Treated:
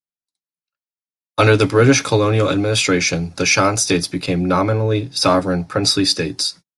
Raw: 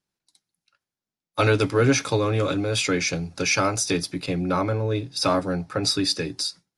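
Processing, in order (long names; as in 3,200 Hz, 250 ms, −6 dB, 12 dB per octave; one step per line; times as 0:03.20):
noise gate −42 dBFS, range −28 dB
level +7 dB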